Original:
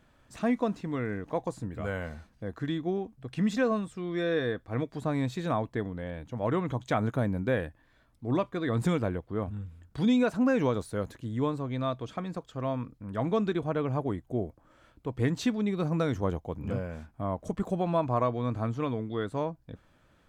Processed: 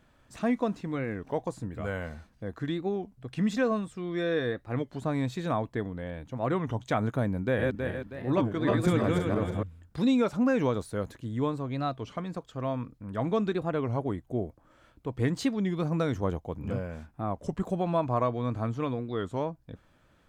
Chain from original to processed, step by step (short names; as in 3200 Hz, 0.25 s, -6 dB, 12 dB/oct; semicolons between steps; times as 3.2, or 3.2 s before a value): 7.43–9.63 regenerating reverse delay 0.16 s, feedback 61%, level -1 dB; record warp 33 1/3 rpm, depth 160 cents